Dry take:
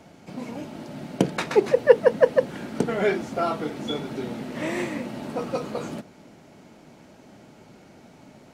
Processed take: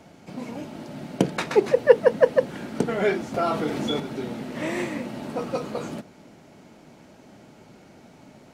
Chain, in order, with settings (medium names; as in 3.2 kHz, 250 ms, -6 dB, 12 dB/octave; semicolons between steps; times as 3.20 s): 3.34–4.00 s: level flattener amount 50%